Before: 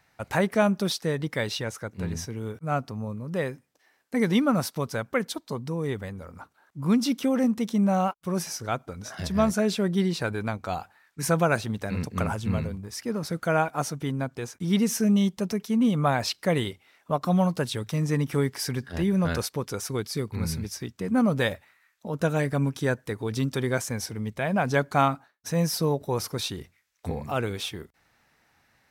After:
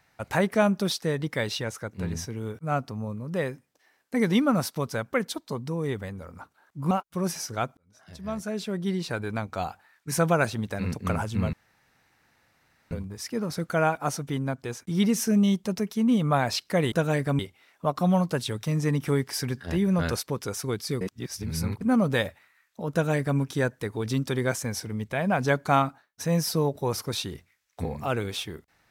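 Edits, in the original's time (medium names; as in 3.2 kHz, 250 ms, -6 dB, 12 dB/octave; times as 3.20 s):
6.91–8.02 s: delete
8.88–10.66 s: fade in
12.64 s: insert room tone 1.38 s
20.27–21.07 s: reverse
22.18–22.65 s: copy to 16.65 s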